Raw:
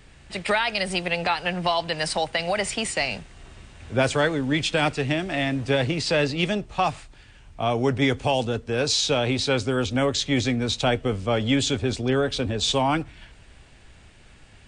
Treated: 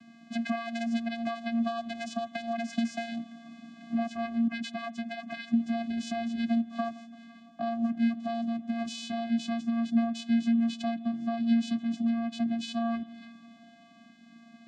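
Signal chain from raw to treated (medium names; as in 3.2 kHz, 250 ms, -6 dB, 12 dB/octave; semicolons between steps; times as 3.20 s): 4.47–5.53 s: harmonic-percussive separation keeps percussive; compression 6:1, threshold -30 dBFS, peak gain reduction 14 dB; vocoder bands 8, square 231 Hz; bucket-brigade echo 169 ms, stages 4096, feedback 82%, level -23 dB; trim +4 dB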